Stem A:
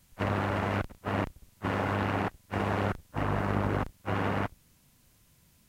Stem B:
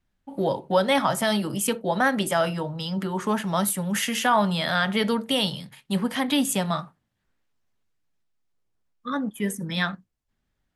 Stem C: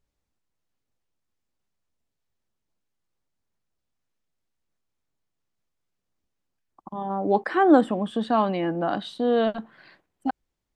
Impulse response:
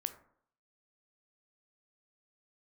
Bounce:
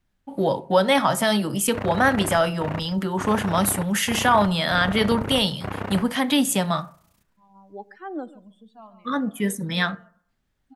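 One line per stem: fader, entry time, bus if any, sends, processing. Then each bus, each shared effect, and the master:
+2.5 dB, 1.55 s, no send, echo send −18 dB, amplitude modulation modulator 30 Hz, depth 80%
−0.5 dB, 0.00 s, send −6 dB, no echo send, no processing
−16.0 dB, 0.45 s, send −9.5 dB, echo send −18 dB, spectral dynamics exaggerated over time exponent 2; automatic ducking −17 dB, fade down 0.95 s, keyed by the second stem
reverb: on, RT60 0.65 s, pre-delay 12 ms
echo: single-tap delay 140 ms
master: no processing

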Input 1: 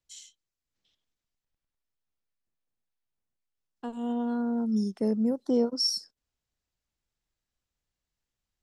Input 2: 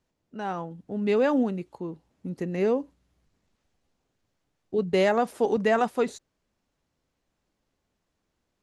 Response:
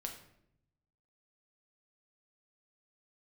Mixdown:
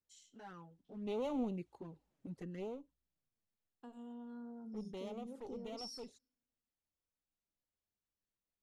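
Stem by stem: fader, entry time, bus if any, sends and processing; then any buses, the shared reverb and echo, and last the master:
−19.0 dB, 0.00 s, send −3.5 dB, brickwall limiter −26.5 dBFS, peak gain reduction 11 dB
0:00.82 −16.5 dB → 0:01.36 −9.5 dB → 0:02.30 −9.5 dB → 0:02.87 −20.5 dB, 0.00 s, no send, asymmetric clip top −30 dBFS, bottom −17 dBFS; flanger swept by the level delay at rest 10 ms, full sweep at −25.5 dBFS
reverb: on, RT60 0.75 s, pre-delay 6 ms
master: no processing

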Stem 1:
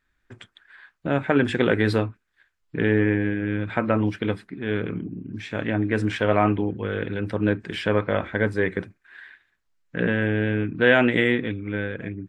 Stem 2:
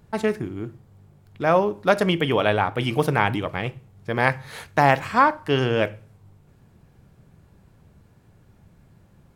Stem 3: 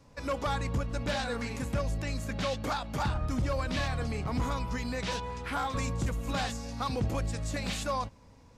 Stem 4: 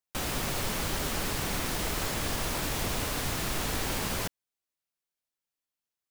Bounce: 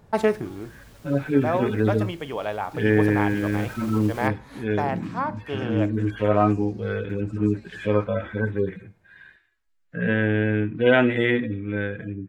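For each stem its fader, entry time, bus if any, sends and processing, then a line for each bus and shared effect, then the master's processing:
+1.5 dB, 0.00 s, no send, harmonic-percussive split with one part muted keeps harmonic; hum removal 238.5 Hz, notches 25
−5.0 dB, 0.00 s, no send, parametric band 720 Hz +7 dB 1.8 octaves; speech leveller within 4 dB 0.5 s; automatic ducking −8 dB, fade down 0.55 s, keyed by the first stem
−11.0 dB, 0.00 s, no send, brickwall limiter −33.5 dBFS, peak gain reduction 10 dB
0:02.83 −20 dB → 0:03.56 −10.5 dB, 0.00 s, no send, brickwall limiter −24 dBFS, peak gain reduction 6 dB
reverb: not used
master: no processing

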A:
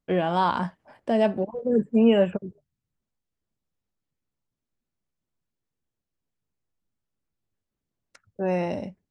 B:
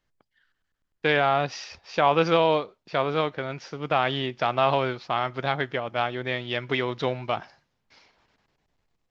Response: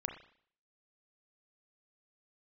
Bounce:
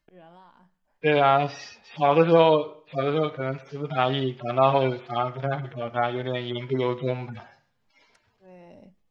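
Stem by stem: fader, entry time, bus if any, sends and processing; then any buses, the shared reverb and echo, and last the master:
−9.0 dB, 0.00 s, send −18.5 dB, volume swells 649 ms; downward compressor 5 to 1, threshold −37 dBFS, peak gain reduction 12.5 dB; automatic ducking −24 dB, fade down 0.80 s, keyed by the second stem
+0.5 dB, 0.00 s, send −6.5 dB, harmonic-percussive split with one part muted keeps harmonic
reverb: on, RT60 0.55 s, pre-delay 30 ms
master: no processing

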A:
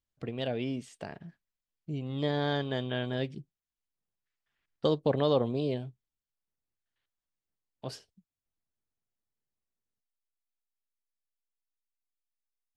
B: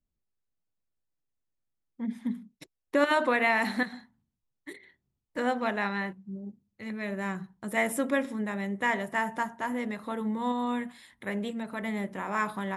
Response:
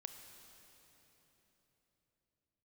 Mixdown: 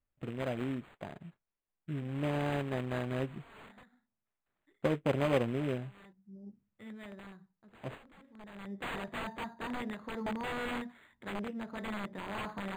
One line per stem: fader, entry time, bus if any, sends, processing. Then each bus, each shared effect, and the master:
−2.0 dB, 0.00 s, no send, notch filter 450 Hz, Q 12; short delay modulated by noise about 2,100 Hz, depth 0.1 ms
−5.0 dB, 0.00 s, no send, wrap-around overflow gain 26 dB; automatic ducking −21 dB, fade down 1.20 s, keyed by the first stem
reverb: not used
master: linearly interpolated sample-rate reduction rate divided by 8×

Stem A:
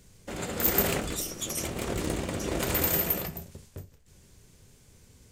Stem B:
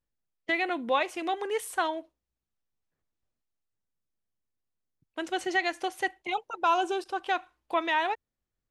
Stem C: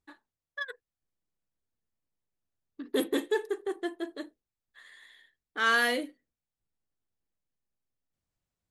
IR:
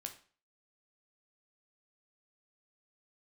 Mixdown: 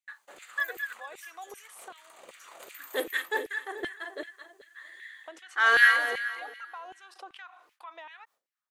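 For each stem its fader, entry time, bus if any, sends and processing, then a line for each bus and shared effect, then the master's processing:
−12.5 dB, 0.00 s, bus A, no send, no echo send, parametric band 330 Hz −6.5 dB 2.7 octaves; notch filter 5,300 Hz, Q 5.2
−15.0 dB, 0.10 s, bus A, no send, no echo send, envelope flattener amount 50%
−2.0 dB, 0.00 s, no bus, no send, echo send −8 dB, parametric band 1,800 Hz +7 dB 0.65 octaves
bus A: 0.0 dB, parametric band 1,200 Hz +6 dB 0.27 octaves; downward compressor 12 to 1, threshold −44 dBFS, peak gain reduction 13.5 dB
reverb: not used
echo: repeating echo 216 ms, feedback 41%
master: auto-filter high-pass saw down 2.6 Hz 410–2,500 Hz; noise gate with hold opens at −53 dBFS

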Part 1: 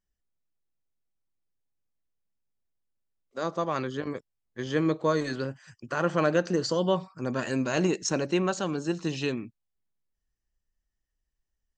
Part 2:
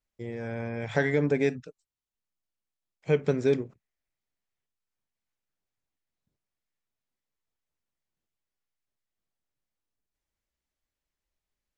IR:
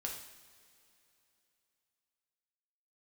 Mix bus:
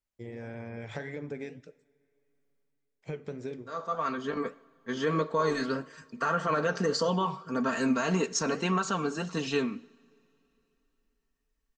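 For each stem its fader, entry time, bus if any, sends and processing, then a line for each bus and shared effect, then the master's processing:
+1.5 dB, 0.30 s, send −13.5 dB, parametric band 1,200 Hz +7.5 dB 0.73 octaves; comb filter 4.4 ms, depth 77%; automatic ducking −16 dB, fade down 0.45 s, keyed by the second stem
−1.5 dB, 0.00 s, send −12 dB, downward compressor 4 to 1, threshold −31 dBFS, peak gain reduction 11.5 dB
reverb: on, pre-delay 3 ms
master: flanger 1.7 Hz, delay 2.7 ms, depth 8.4 ms, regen −75%; brickwall limiter −18 dBFS, peak gain reduction 10 dB

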